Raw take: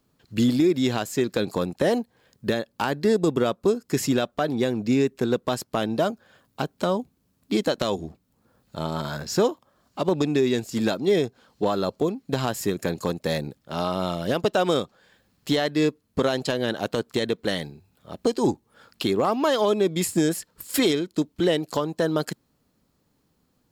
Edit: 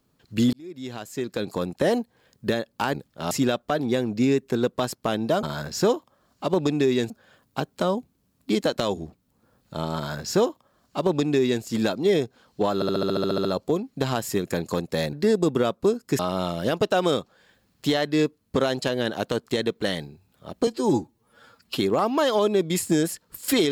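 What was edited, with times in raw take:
0.53–1.86 s: fade in
2.94–4.00 s: swap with 13.45–13.82 s
8.98–10.65 s: copy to 6.12 s
11.77 s: stutter 0.07 s, 11 plays
18.30–19.04 s: stretch 1.5×

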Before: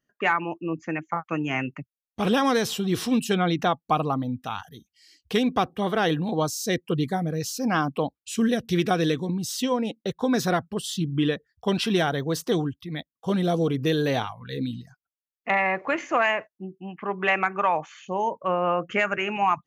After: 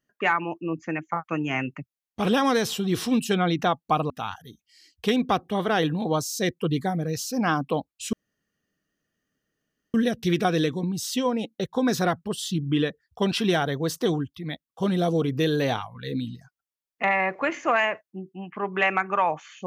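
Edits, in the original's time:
4.10–4.37 s: delete
8.40 s: insert room tone 1.81 s

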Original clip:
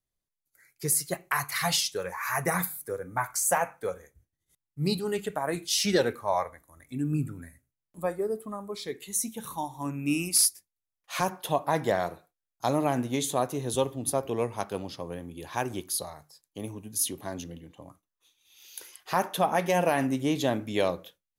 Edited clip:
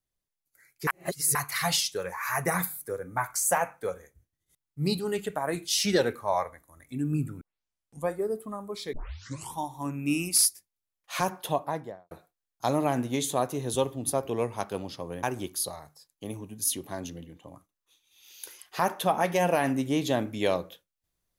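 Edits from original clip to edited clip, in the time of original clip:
0.87–1.35 s: reverse
7.41 s: tape start 0.67 s
8.93 s: tape start 0.66 s
11.41–12.11 s: studio fade out
15.23–15.57 s: delete

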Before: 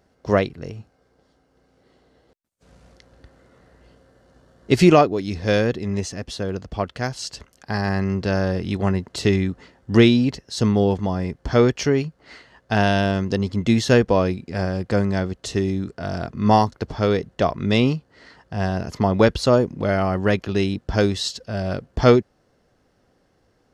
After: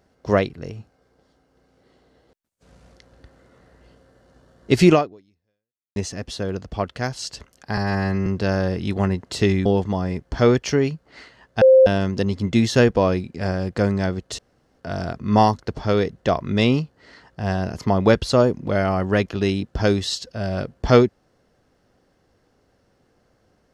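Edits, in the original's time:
4.93–5.96 s: fade out exponential
7.77–8.10 s: stretch 1.5×
9.49–10.79 s: delete
12.75–13.00 s: bleep 524 Hz -7.5 dBFS
15.52–15.92 s: room tone

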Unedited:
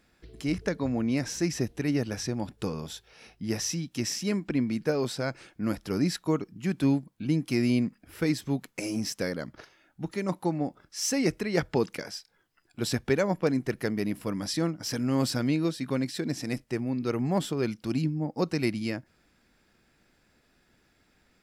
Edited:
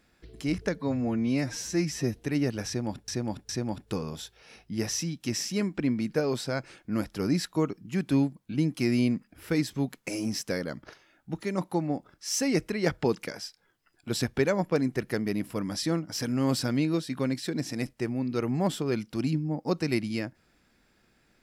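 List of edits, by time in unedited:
0.75–1.69 s: stretch 1.5×
2.20–2.61 s: loop, 3 plays

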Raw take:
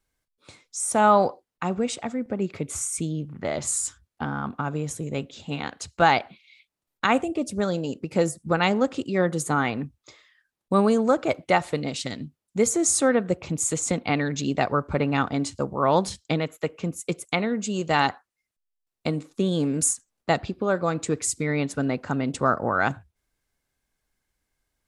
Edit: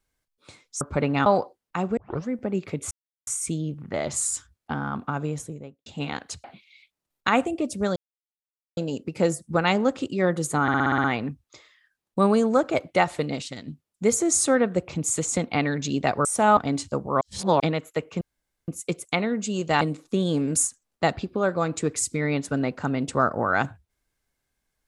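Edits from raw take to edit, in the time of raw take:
0.81–1.13 s: swap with 14.79–15.24 s
1.84 s: tape start 0.32 s
2.78 s: insert silence 0.36 s
4.76–5.37 s: studio fade out
5.95–6.21 s: delete
7.73 s: insert silence 0.81 s
9.58 s: stutter 0.06 s, 8 plays
11.96–12.22 s: gain -5.5 dB
15.88–16.27 s: reverse
16.88 s: insert room tone 0.47 s
18.01–19.07 s: delete

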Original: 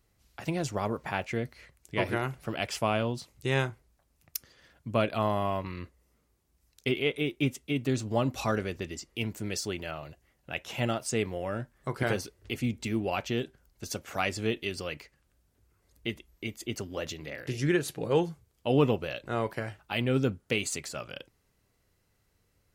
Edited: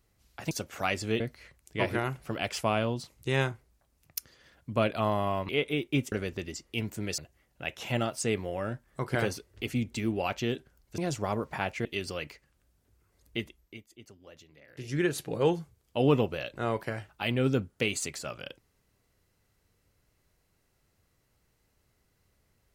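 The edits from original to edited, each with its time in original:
0.51–1.38 s: swap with 13.86–14.55 s
5.67–6.97 s: delete
7.60–8.55 s: delete
9.61–10.06 s: delete
16.10–17.82 s: dip -17 dB, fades 0.45 s

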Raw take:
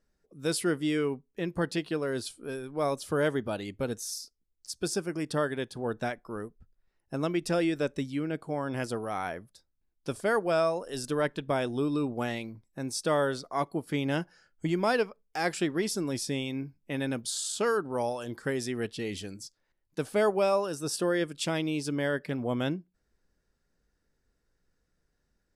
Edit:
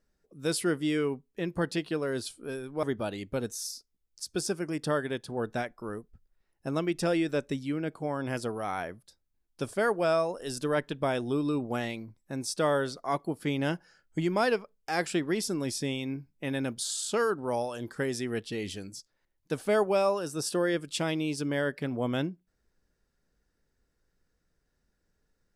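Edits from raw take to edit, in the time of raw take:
2.83–3.30 s: delete

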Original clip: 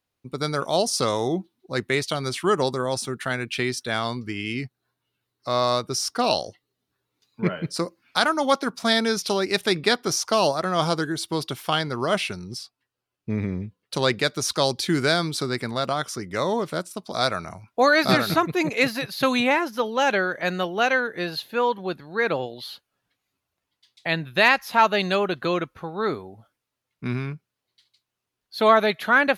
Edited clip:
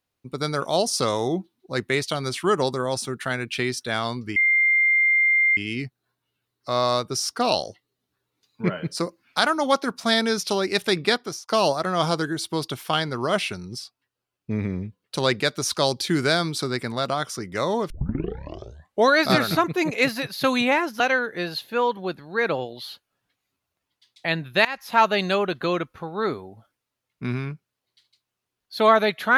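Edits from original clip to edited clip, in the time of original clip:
4.36 s: add tone 2.1 kHz -15.5 dBFS 1.21 s
9.88–10.27 s: fade out
16.69 s: tape start 1.26 s
19.79–20.81 s: delete
24.46–24.79 s: fade in, from -22 dB

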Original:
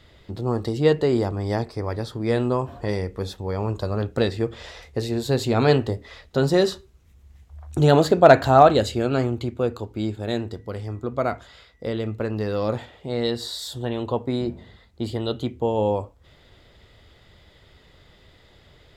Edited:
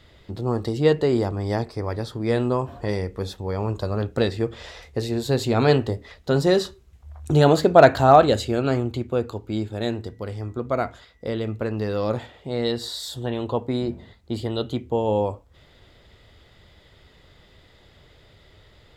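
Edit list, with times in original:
shrink pauses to 40%

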